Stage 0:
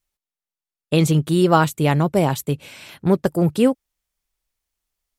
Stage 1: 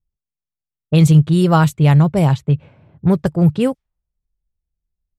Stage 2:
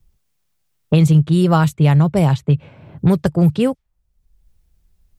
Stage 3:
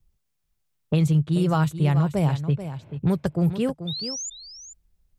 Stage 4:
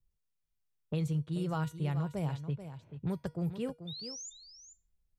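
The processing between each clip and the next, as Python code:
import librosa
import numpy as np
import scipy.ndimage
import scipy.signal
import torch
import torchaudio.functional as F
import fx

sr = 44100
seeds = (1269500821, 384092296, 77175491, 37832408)

y1 = fx.env_lowpass(x, sr, base_hz=360.0, full_db=-12.5)
y1 = fx.low_shelf_res(y1, sr, hz=190.0, db=8.0, q=1.5)
y2 = fx.band_squash(y1, sr, depth_pct=70)
y2 = y2 * librosa.db_to_amplitude(-1.0)
y3 = fx.spec_paint(y2, sr, seeds[0], shape='rise', start_s=3.87, length_s=0.43, low_hz=3500.0, high_hz=7300.0, level_db=-24.0)
y3 = y3 + 10.0 ** (-11.0 / 20.0) * np.pad(y3, (int(435 * sr / 1000.0), 0))[:len(y3)]
y3 = y3 * librosa.db_to_amplitude(-8.0)
y4 = fx.comb_fb(y3, sr, f0_hz=480.0, decay_s=0.29, harmonics='all', damping=0.0, mix_pct=60)
y4 = y4 * librosa.db_to_amplitude(-5.0)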